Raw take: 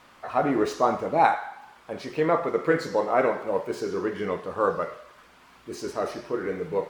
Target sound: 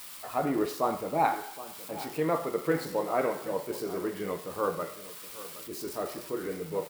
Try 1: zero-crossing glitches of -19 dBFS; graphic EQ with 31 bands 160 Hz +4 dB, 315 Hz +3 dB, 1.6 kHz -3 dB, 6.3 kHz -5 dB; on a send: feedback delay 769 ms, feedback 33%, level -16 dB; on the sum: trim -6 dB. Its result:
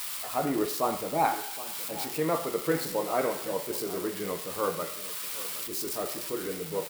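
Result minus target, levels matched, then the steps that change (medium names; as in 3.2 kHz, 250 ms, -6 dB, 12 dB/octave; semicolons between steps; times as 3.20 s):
zero-crossing glitches: distortion +9 dB
change: zero-crossing glitches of -28 dBFS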